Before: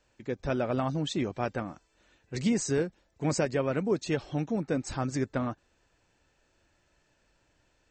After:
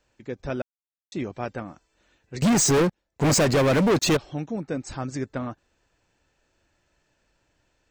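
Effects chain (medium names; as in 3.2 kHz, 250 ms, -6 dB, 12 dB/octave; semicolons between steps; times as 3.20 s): 0.62–1.12 s: mute; 2.42–4.17 s: waveshaping leveller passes 5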